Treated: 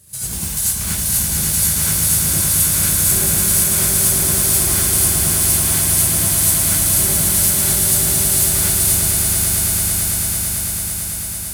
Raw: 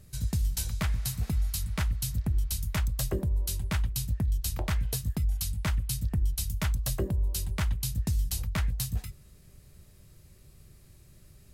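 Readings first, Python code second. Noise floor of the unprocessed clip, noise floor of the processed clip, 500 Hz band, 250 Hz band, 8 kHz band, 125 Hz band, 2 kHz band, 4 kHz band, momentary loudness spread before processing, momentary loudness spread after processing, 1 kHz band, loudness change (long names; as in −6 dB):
−56 dBFS, −25 dBFS, +13.0 dB, +12.0 dB, +26.5 dB, +7.0 dB, +15.0 dB, +18.0 dB, 1 LU, 6 LU, +14.0 dB, +17.5 dB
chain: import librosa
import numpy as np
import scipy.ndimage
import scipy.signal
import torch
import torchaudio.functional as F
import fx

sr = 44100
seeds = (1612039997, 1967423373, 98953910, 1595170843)

p1 = fx.high_shelf(x, sr, hz=3700.0, db=10.5)
p2 = (np.mod(10.0 ** (22.5 / 20.0) * p1 + 1.0, 2.0) - 1.0) / 10.0 ** (22.5 / 20.0)
p3 = p1 + (p2 * librosa.db_to_amplitude(-4.5))
p4 = fx.mod_noise(p3, sr, seeds[0], snr_db=12)
p5 = scipy.signal.sosfilt(scipy.signal.butter(2, 81.0, 'highpass', fs=sr, output='sos'), p4)
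p6 = fx.peak_eq(p5, sr, hz=9700.0, db=11.0, octaves=0.78)
p7 = p6 + fx.echo_swell(p6, sr, ms=111, loudest=8, wet_db=-6.0, dry=0)
p8 = fx.rev_gated(p7, sr, seeds[1], gate_ms=120, shape='rising', drr_db=-6.0)
y = p8 * librosa.db_to_amplitude(-6.0)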